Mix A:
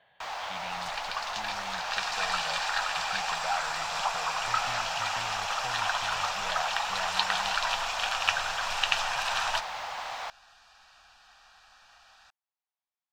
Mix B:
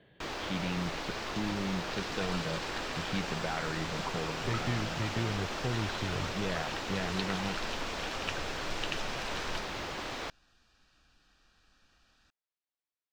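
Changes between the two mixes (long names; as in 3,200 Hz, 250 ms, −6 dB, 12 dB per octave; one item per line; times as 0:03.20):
second sound −10.5 dB
master: add low shelf with overshoot 520 Hz +14 dB, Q 3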